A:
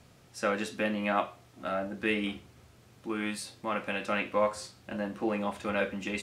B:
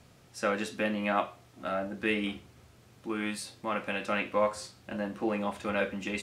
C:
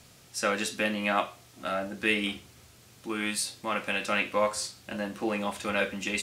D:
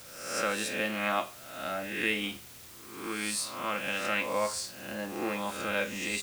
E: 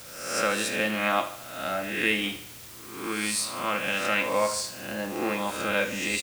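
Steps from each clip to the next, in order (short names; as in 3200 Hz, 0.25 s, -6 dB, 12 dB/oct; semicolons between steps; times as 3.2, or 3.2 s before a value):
nothing audible
high shelf 2600 Hz +11.5 dB
spectral swells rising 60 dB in 0.82 s; in parallel at -6 dB: requantised 6-bit, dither triangular; on the sum: gain -8.5 dB
feedback echo 75 ms, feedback 47%, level -13.5 dB; gain +4.5 dB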